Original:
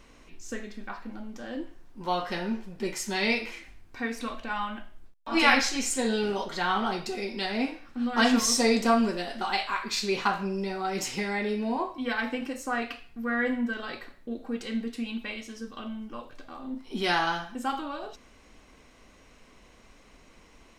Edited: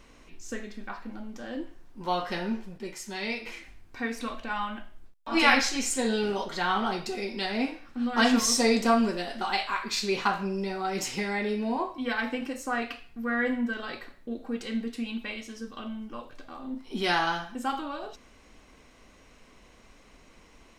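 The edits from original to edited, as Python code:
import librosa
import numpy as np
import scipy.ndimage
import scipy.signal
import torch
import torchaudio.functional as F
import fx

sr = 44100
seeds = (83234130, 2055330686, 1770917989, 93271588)

y = fx.edit(x, sr, fx.clip_gain(start_s=2.78, length_s=0.68, db=-6.5), tone=tone)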